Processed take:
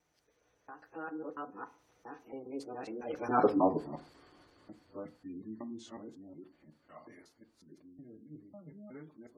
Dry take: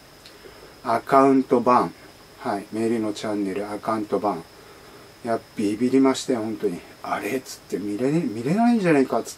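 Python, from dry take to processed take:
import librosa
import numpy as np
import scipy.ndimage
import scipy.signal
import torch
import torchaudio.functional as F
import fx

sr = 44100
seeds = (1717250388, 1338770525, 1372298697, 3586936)

y = fx.local_reverse(x, sr, ms=160.0)
y = fx.doppler_pass(y, sr, speed_mps=50, closest_m=8.0, pass_at_s=3.48)
y = fx.spec_gate(y, sr, threshold_db=-25, keep='strong')
y = fx.rev_fdn(y, sr, rt60_s=0.35, lf_ratio=1.0, hf_ratio=0.25, size_ms=20.0, drr_db=8.0)
y = y * librosa.db_to_amplitude(-2.5)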